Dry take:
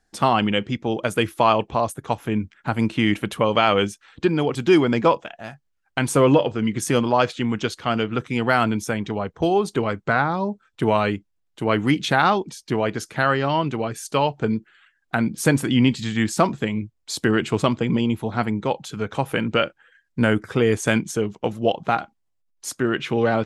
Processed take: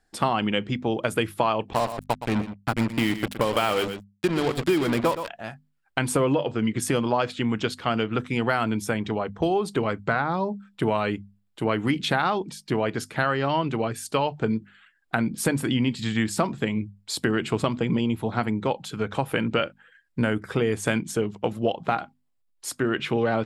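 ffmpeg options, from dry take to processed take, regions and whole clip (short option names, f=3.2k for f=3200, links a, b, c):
-filter_complex "[0:a]asettb=1/sr,asplit=3[a][b][c];[a]atrim=end=1.734[d];[b]atrim=start=1.73:end=5.28,asetpts=PTS-STARTPTS,afade=t=in:d=0.004:c=qsin,afade=t=out:st=3.546:d=0.004:c=qsin,acrusher=bits=3:mix=0:aa=0.5,aecho=1:1:118:0.224,atrim=end_sample=156555[e];[c]atrim=start=5.276[f];[d][e]acrossfade=d=0.004:c1=hsin:c2=qsin[g];[g][f]acrossfade=d=0.004:c1=qsin:c2=hsin,acompressor=threshold=-19dB:ratio=5,equalizer=f=6.2k:w=5.1:g=-7,bandreject=f=50:t=h:w=6,bandreject=f=100:t=h:w=6,bandreject=f=150:t=h:w=6,bandreject=f=200:t=h:w=6,bandreject=f=250:t=h:w=6"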